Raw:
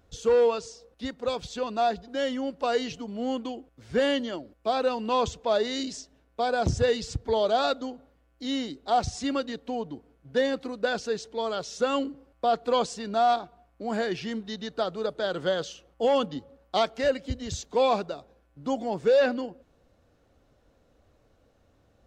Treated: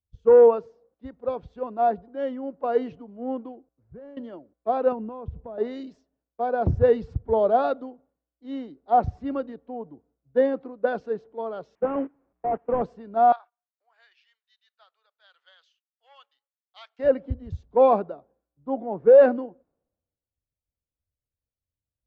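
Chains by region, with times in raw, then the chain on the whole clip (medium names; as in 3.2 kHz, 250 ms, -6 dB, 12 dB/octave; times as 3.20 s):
3.52–4.17 s: median filter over 15 samples + compression 8:1, threshold -32 dBFS
4.92–5.58 s: low-pass 4.3 kHz + bass shelf 290 Hz +11 dB + compression 8:1, threshold -29 dBFS
11.75–12.82 s: one-bit delta coder 16 kbps, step -34.5 dBFS + gate -31 dBFS, range -20 dB
13.32–16.99 s: gate -51 dBFS, range -13 dB + Bessel high-pass 1.6 kHz, order 4
whole clip: low-pass 1 kHz 12 dB/octave; bass shelf 84 Hz -10.5 dB; three bands expanded up and down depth 100%; trim +1.5 dB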